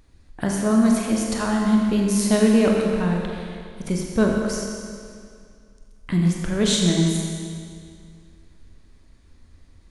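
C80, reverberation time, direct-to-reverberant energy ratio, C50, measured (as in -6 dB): 2.0 dB, 2.2 s, -0.5 dB, 1.0 dB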